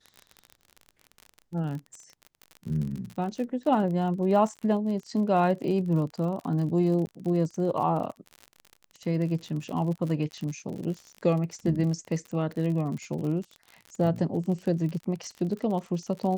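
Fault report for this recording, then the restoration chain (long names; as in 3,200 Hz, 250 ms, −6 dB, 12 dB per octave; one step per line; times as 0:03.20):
surface crackle 47 per second −34 dBFS
0:07.06–0:07.07: drop-out 10 ms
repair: click removal
repair the gap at 0:07.06, 10 ms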